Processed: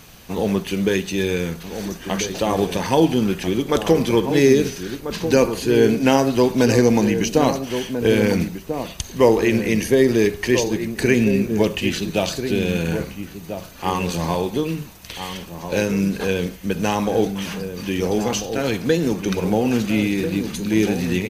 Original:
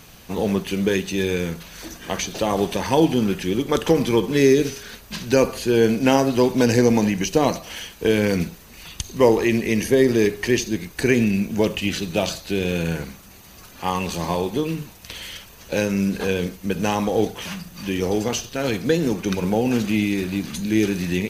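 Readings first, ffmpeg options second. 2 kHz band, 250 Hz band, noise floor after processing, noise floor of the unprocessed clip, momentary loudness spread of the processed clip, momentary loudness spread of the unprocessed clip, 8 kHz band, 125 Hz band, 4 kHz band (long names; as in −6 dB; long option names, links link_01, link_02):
+1.0 dB, +1.5 dB, −39 dBFS, −45 dBFS, 12 LU, 14 LU, +1.0 dB, +1.5 dB, +1.0 dB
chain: -filter_complex "[0:a]asplit=2[link_01][link_02];[link_02]adelay=1341,volume=-8dB,highshelf=frequency=4000:gain=-30.2[link_03];[link_01][link_03]amix=inputs=2:normalize=0,volume=1dB"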